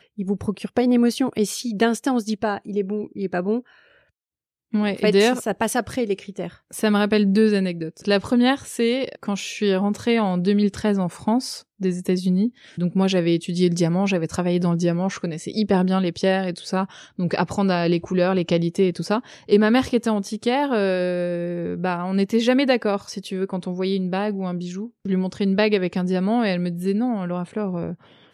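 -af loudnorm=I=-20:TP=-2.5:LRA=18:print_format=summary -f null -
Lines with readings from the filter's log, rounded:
Input Integrated:    -22.2 LUFS
Input True Peak:      -4.7 dBTP
Input LRA:             2.5 LU
Input Threshold:     -32.3 LUFS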